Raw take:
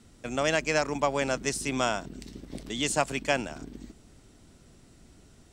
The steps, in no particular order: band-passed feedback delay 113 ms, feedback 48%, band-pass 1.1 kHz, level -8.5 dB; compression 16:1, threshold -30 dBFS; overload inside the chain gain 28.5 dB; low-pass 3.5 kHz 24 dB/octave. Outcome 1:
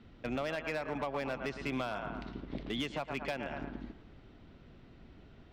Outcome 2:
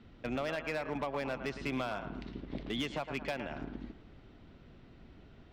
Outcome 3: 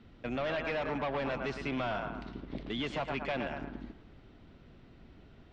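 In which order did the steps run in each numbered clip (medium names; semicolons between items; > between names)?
band-passed feedback delay > compression > low-pass > overload inside the chain; low-pass > compression > band-passed feedback delay > overload inside the chain; band-passed feedback delay > overload inside the chain > low-pass > compression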